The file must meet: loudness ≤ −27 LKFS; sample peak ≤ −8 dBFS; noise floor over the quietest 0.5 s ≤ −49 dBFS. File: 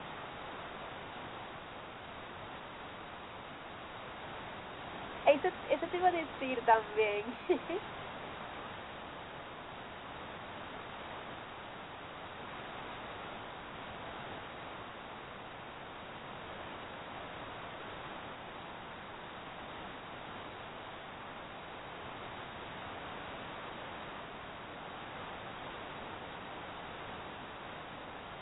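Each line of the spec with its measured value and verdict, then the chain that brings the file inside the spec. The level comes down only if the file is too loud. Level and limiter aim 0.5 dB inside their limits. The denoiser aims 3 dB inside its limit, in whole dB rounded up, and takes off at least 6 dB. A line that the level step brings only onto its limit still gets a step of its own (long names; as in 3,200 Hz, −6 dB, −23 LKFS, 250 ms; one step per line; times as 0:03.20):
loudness −41.0 LKFS: in spec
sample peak −13.5 dBFS: in spec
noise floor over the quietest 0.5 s −48 dBFS: out of spec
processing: broadband denoise 6 dB, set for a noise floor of −48 dBFS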